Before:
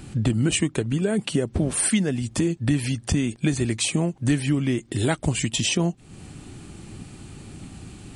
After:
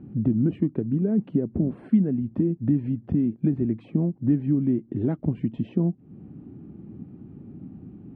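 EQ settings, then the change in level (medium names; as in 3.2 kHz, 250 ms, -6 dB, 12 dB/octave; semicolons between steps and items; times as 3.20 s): band-pass filter 230 Hz, Q 1.5; distance through air 480 m; +3.5 dB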